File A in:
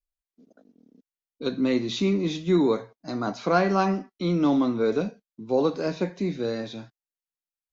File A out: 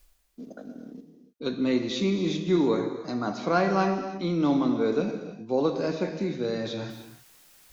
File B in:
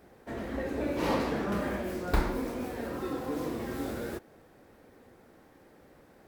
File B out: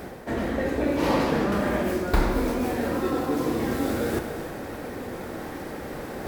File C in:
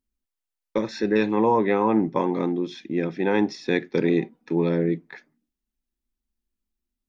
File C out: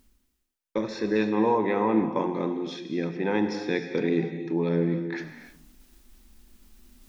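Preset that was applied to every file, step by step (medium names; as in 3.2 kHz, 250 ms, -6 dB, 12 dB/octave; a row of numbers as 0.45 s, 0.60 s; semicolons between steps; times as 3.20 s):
reverse; upward compressor, threshold -24 dBFS; reverse; gated-style reverb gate 340 ms flat, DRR 6.5 dB; normalise loudness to -27 LUFS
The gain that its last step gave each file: -2.0 dB, +4.5 dB, -4.0 dB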